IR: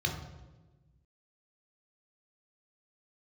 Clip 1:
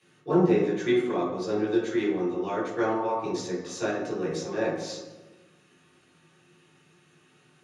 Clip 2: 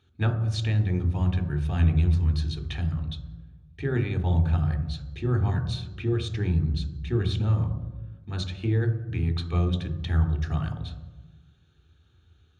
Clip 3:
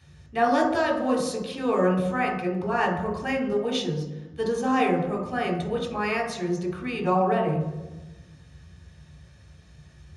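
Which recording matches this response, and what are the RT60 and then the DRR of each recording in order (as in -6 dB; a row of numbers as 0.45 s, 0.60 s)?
3; 1.2 s, 1.2 s, 1.2 s; -8.5 dB, 7.5 dB, 0.5 dB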